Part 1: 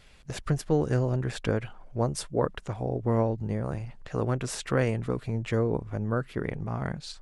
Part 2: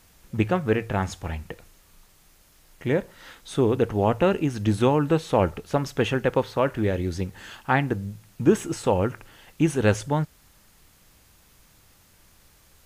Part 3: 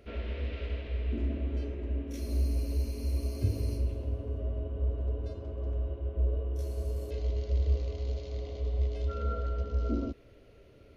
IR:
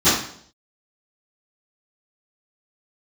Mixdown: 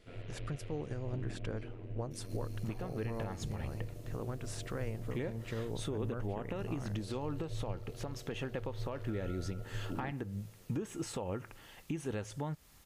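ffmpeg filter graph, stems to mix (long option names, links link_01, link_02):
-filter_complex "[0:a]alimiter=limit=-16.5dB:level=0:latency=1:release=225,volume=-10dB[link_01];[1:a]bandreject=frequency=1500:width=16,acompressor=threshold=-25dB:ratio=6,alimiter=limit=-20dB:level=0:latency=1:release=177,adelay=2300,volume=-4.5dB[link_02];[2:a]aeval=exprs='val(0)*sin(2*PI*45*n/s)':channel_layout=same,volume=-6dB[link_03];[link_01][link_02][link_03]amix=inputs=3:normalize=0,alimiter=level_in=3.5dB:limit=-24dB:level=0:latency=1:release=337,volume=-3.5dB"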